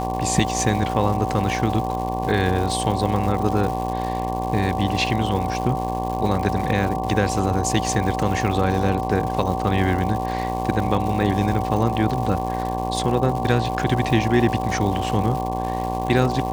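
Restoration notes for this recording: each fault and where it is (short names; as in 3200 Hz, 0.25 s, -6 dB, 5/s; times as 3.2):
buzz 60 Hz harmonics 19 -27 dBFS
crackle 270/s -28 dBFS
tone 760 Hz -26 dBFS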